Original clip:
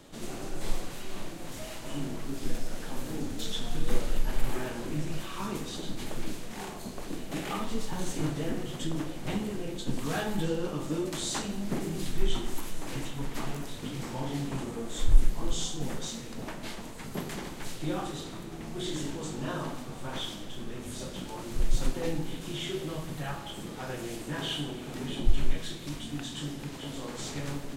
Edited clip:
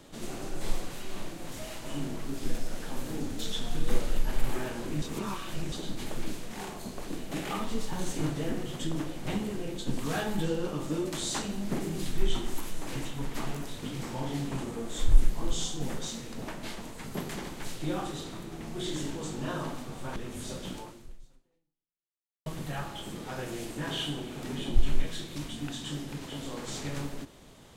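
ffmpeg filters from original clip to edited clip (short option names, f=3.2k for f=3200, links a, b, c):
-filter_complex "[0:a]asplit=5[a][b][c][d][e];[a]atrim=end=5.022[f];[b]atrim=start=5.018:end=5.722,asetpts=PTS-STARTPTS,areverse[g];[c]atrim=start=5.718:end=20.162[h];[d]atrim=start=20.668:end=22.97,asetpts=PTS-STARTPTS,afade=t=out:st=0.612:d=1.69:c=exp[i];[e]atrim=start=22.97,asetpts=PTS-STARTPTS,afade=t=in:d=0.004:c=hsin[j];[f][g]acrossfade=d=0.004:c1=hsin:c2=hsin[k];[k][h]acrossfade=d=0.004:c1=hsin:c2=hsin[l];[i][j]concat=n=2:v=0:a=1[m];[l][m]acrossfade=d=0.004:c1=hsin:c2=hsin"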